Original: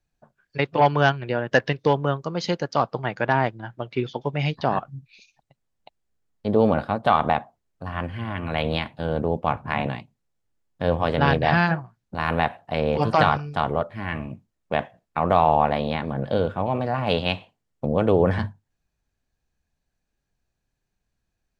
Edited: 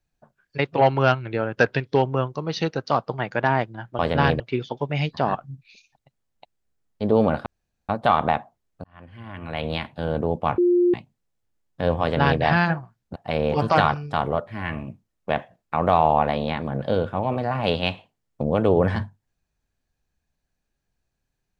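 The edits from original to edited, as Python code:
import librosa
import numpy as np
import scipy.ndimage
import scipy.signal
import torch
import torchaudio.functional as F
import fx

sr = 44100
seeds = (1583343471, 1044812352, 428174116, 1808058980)

y = fx.edit(x, sr, fx.speed_span(start_s=0.76, length_s=1.98, speed=0.93),
    fx.insert_room_tone(at_s=6.9, length_s=0.43),
    fx.fade_in_span(start_s=7.85, length_s=1.16),
    fx.bleep(start_s=9.59, length_s=0.36, hz=353.0, db=-14.5),
    fx.duplicate(start_s=11.02, length_s=0.41, to_s=3.84),
    fx.cut(start_s=12.17, length_s=0.42), tone=tone)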